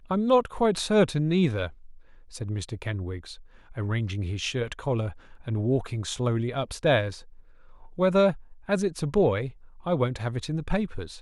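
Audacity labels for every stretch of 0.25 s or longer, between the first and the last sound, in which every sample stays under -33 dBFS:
1.680000	2.350000	silence
3.330000	3.770000	silence
5.110000	5.470000	silence
7.180000	7.990000	silence
8.330000	8.690000	silence
9.490000	9.860000	silence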